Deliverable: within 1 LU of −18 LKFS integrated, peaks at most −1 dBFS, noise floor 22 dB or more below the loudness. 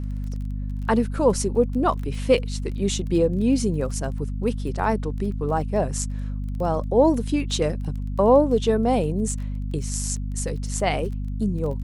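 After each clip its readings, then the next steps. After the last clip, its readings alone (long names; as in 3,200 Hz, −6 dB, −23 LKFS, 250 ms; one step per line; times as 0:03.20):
crackle rate 18 per second; mains hum 50 Hz; hum harmonics up to 250 Hz; level of the hum −25 dBFS; integrated loudness −23.5 LKFS; sample peak −5.0 dBFS; target loudness −18.0 LKFS
→ click removal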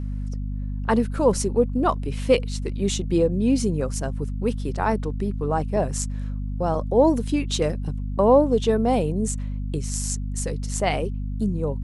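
crackle rate 0 per second; mains hum 50 Hz; hum harmonics up to 250 Hz; level of the hum −25 dBFS
→ mains-hum notches 50/100/150/200/250 Hz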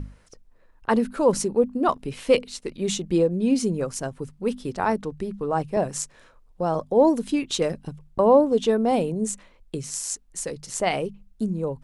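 mains hum none found; integrated loudness −24.0 LKFS; sample peak −5.5 dBFS; target loudness −18.0 LKFS
→ level +6 dB
brickwall limiter −1 dBFS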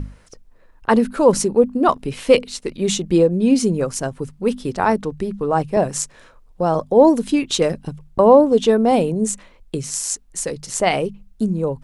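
integrated loudness −18.5 LKFS; sample peak −1.0 dBFS; background noise floor −50 dBFS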